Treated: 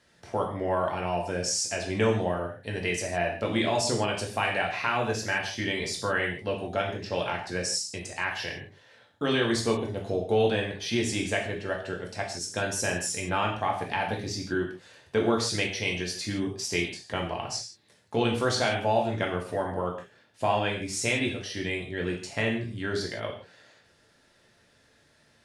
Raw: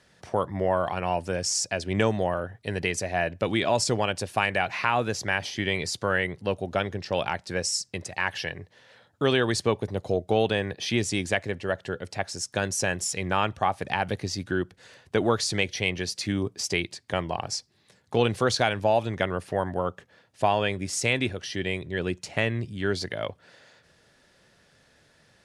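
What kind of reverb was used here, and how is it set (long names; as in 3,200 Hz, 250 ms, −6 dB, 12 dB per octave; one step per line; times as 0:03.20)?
reverb whose tail is shaped and stops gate 190 ms falling, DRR −1 dB
level −5 dB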